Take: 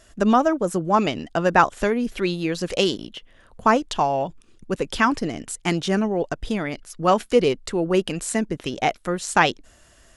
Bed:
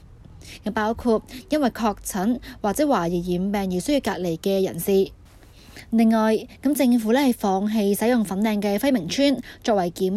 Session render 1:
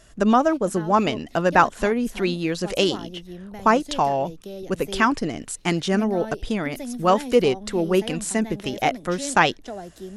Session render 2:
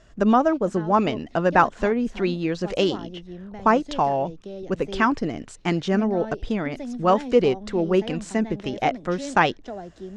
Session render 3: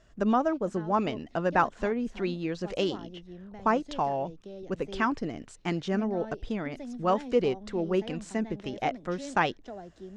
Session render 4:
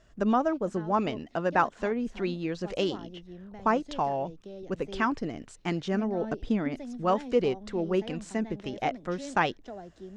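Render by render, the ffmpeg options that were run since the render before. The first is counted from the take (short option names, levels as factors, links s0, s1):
-filter_complex "[1:a]volume=0.188[s0];[0:a][s0]amix=inputs=2:normalize=0"
-af "lowpass=f=7300:w=0.5412,lowpass=f=7300:w=1.3066,highshelf=f=2900:g=-8.5"
-af "volume=0.447"
-filter_complex "[0:a]asettb=1/sr,asplit=3[s0][s1][s2];[s0]atrim=end=1.244[s3];[s1]atrim=start=1.24:end=1.91,asetpts=PTS-STARTPTS,afade=t=in:d=0.004:c=qsin,afade=t=out:st=0.666:d=0.004:c=qsin,lowshelf=f=93:g=-9[s4];[s2]atrim=start=1.906[s5];[s3][s4]acrossfade=d=0.004:c1=hsin:c2=qsin[s6];[s6][s5]acrossfade=d=0.004:c1=qsin:c2=hsin,asettb=1/sr,asplit=3[s7][s8][s9];[s7]atrim=end=6.224[s10];[s8]atrim=start=6.22:end=6.76,asetpts=PTS-STARTPTS,afade=t=in:d=0.004:c=qsin,afade=t=out:st=0.536:d=0.004:c=qsin,equalizer=f=250:w=1.5:g=7.5[s11];[s9]atrim=start=6.756[s12];[s10][s11]acrossfade=d=0.004:c1=hsin:c2=qsin[s13];[s13][s12]acrossfade=d=0.004:c1=qsin:c2=hsin"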